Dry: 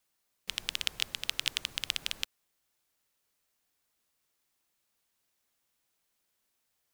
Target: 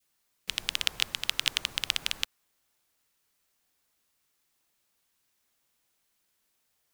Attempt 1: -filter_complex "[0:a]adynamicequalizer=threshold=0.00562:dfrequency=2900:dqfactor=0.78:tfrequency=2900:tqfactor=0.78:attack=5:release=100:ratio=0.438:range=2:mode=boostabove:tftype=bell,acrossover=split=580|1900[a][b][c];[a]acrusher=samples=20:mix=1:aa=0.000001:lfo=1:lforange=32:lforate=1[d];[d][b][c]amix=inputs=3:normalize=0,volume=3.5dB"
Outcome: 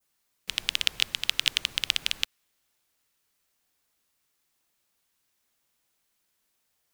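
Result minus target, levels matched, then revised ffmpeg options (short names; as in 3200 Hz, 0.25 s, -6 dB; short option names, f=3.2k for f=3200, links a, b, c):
1000 Hz band -5.0 dB
-filter_complex "[0:a]adynamicequalizer=threshold=0.00562:dfrequency=960:dqfactor=0.78:tfrequency=960:tqfactor=0.78:attack=5:release=100:ratio=0.438:range=2:mode=boostabove:tftype=bell,acrossover=split=580|1900[a][b][c];[a]acrusher=samples=20:mix=1:aa=0.000001:lfo=1:lforange=32:lforate=1[d];[d][b][c]amix=inputs=3:normalize=0,volume=3.5dB"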